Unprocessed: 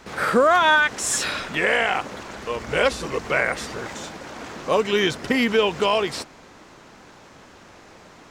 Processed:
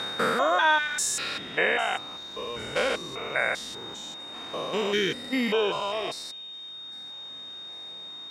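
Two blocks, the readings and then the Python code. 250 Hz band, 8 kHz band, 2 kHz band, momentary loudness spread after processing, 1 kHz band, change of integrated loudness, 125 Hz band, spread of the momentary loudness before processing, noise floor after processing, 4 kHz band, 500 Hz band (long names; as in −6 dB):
−6.5 dB, −4.0 dB, −5.0 dB, 15 LU, −5.5 dB, −7.0 dB, −8.5 dB, 17 LU, −41 dBFS, −2.0 dB, −6.5 dB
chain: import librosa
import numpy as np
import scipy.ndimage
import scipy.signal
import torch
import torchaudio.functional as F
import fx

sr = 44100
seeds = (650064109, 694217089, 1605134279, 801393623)

p1 = fx.spec_steps(x, sr, hold_ms=200)
p2 = fx.highpass(p1, sr, hz=160.0, slope=6)
p3 = p2 + 10.0 ** (-31.0 / 20.0) * np.sin(2.0 * np.pi * 3700.0 * np.arange(len(p2)) / sr)
p4 = fx.dereverb_blind(p3, sr, rt60_s=1.9)
y = p4 + fx.echo_wet_highpass(p4, sr, ms=803, feedback_pct=55, hz=3700.0, wet_db=-22.0, dry=0)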